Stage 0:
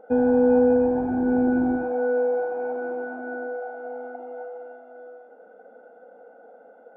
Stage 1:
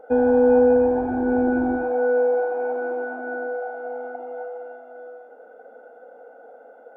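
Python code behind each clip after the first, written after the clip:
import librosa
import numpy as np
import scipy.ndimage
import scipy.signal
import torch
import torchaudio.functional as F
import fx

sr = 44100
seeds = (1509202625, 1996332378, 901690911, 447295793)

y = fx.peak_eq(x, sr, hz=170.0, db=-15.0, octaves=0.71)
y = F.gain(torch.from_numpy(y), 4.0).numpy()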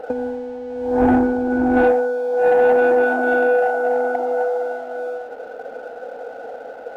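y = fx.over_compress(x, sr, threshold_db=-24.0, ratio=-0.5)
y = fx.leveller(y, sr, passes=1)
y = F.gain(torch.from_numpy(y), 5.0).numpy()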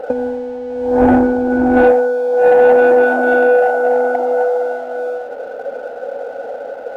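y = fx.small_body(x, sr, hz=(560.0,), ring_ms=85, db=11)
y = F.gain(torch.from_numpy(y), 4.0).numpy()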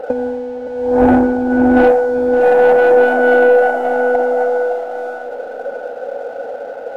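y = fx.tracing_dist(x, sr, depth_ms=0.033)
y = fx.echo_feedback(y, sr, ms=567, feedback_pct=42, wet_db=-11.0)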